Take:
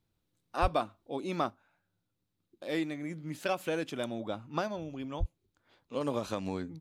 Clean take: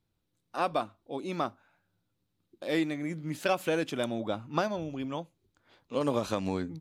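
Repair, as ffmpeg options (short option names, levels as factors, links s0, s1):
-filter_complex "[0:a]asplit=3[s0][s1][s2];[s0]afade=t=out:st=0.61:d=0.02[s3];[s1]highpass=f=140:w=0.5412,highpass=f=140:w=1.3066,afade=t=in:st=0.61:d=0.02,afade=t=out:st=0.73:d=0.02[s4];[s2]afade=t=in:st=0.73:d=0.02[s5];[s3][s4][s5]amix=inputs=3:normalize=0,asplit=3[s6][s7][s8];[s6]afade=t=out:st=5.19:d=0.02[s9];[s7]highpass=f=140:w=0.5412,highpass=f=140:w=1.3066,afade=t=in:st=5.19:d=0.02,afade=t=out:st=5.31:d=0.02[s10];[s8]afade=t=in:st=5.31:d=0.02[s11];[s9][s10][s11]amix=inputs=3:normalize=0,asetnsamples=n=441:p=0,asendcmd='1.5 volume volume 4dB',volume=1"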